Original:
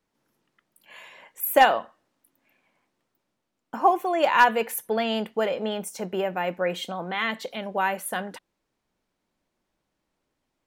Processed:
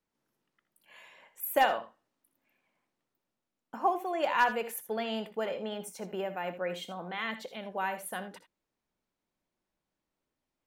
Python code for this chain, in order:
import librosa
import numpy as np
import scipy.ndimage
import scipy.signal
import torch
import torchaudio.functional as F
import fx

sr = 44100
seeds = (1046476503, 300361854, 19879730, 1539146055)

y = fx.room_early_taps(x, sr, ms=(63, 80), db=(-15.0, -14.0))
y = y * 10.0 ** (-8.5 / 20.0)